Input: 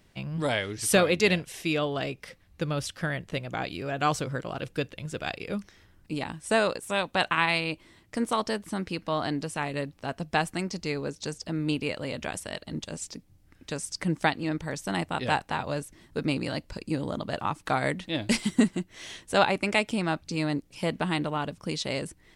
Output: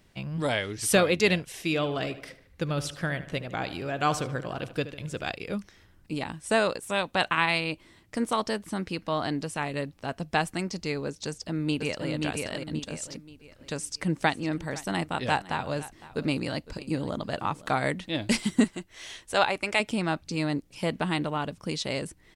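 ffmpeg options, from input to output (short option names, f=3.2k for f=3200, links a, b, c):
-filter_complex "[0:a]asplit=3[a][b][c];[a]afade=t=out:st=1.63:d=0.02[d];[b]asplit=2[e][f];[f]adelay=75,lowpass=f=4.3k:p=1,volume=-13.5dB,asplit=2[g][h];[h]adelay=75,lowpass=f=4.3k:p=1,volume=0.52,asplit=2[i][j];[j]adelay=75,lowpass=f=4.3k:p=1,volume=0.52,asplit=2[k][l];[l]adelay=75,lowpass=f=4.3k:p=1,volume=0.52,asplit=2[m][n];[n]adelay=75,lowpass=f=4.3k:p=1,volume=0.52[o];[e][g][i][k][m][o]amix=inputs=6:normalize=0,afade=t=in:st=1.63:d=0.02,afade=t=out:st=5.3:d=0.02[p];[c]afade=t=in:st=5.3:d=0.02[q];[d][p][q]amix=inputs=3:normalize=0,asplit=2[r][s];[s]afade=t=in:st=11.27:d=0.01,afade=t=out:st=12.1:d=0.01,aecho=0:1:530|1060|1590|2120|2650:0.668344|0.23392|0.0818721|0.0286552|0.0100293[t];[r][t]amix=inputs=2:normalize=0,asplit=3[u][v][w];[u]afade=t=out:st=14.22:d=0.02[x];[v]aecho=1:1:508:0.119,afade=t=in:st=14.22:d=0.02,afade=t=out:st=17.81:d=0.02[y];[w]afade=t=in:st=17.81:d=0.02[z];[x][y][z]amix=inputs=3:normalize=0,asettb=1/sr,asplit=3[aa][ab][ac];[aa]atrim=end=18.644[ad];[ab]atrim=start=18.64:end=19.8,asetpts=PTS-STARTPTS,afade=t=in:d=0.004:c=qsin,afade=t=out:st=1.156:d=0.004:c=qsin,equalizer=f=190:t=o:w=1.9:g=-9[ae];[ac]atrim=start=19.796[af];[ad][ae]acrossfade=d=0.004:c1=hsin:c2=qsin[ag];[ag][af]acrossfade=d=0.004:c1=qsin:c2=hsin"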